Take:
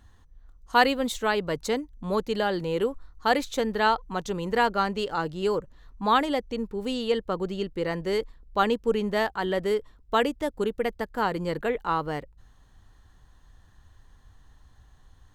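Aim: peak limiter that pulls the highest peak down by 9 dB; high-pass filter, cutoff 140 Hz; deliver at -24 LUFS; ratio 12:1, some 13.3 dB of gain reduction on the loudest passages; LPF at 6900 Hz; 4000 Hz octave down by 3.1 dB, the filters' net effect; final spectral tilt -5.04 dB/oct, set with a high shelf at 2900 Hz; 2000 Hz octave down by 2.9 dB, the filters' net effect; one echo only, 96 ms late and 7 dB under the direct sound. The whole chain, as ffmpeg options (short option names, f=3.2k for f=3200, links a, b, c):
-af "highpass=140,lowpass=6.9k,equalizer=f=2k:t=o:g=-5,highshelf=f=2.9k:g=8,equalizer=f=4k:t=o:g=-8,acompressor=threshold=-29dB:ratio=12,alimiter=level_in=2dB:limit=-24dB:level=0:latency=1,volume=-2dB,aecho=1:1:96:0.447,volume=11.5dB"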